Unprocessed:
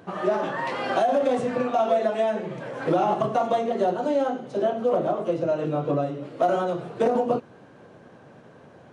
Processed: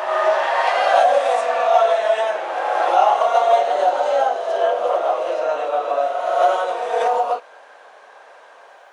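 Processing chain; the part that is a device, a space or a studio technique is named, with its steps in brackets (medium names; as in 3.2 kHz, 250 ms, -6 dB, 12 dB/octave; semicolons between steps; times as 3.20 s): ghost voice (reverse; reverberation RT60 2.6 s, pre-delay 4 ms, DRR -2 dB; reverse; high-pass 640 Hz 24 dB/octave); trim +6.5 dB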